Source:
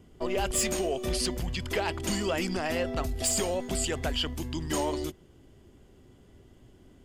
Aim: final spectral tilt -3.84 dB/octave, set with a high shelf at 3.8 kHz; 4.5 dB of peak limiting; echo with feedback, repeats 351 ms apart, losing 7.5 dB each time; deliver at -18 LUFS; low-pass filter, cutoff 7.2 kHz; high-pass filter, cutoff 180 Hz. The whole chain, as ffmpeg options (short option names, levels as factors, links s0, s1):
-af "highpass=180,lowpass=7200,highshelf=f=3800:g=-8.5,alimiter=limit=0.0708:level=0:latency=1,aecho=1:1:351|702|1053|1404|1755:0.422|0.177|0.0744|0.0312|0.0131,volume=5.96"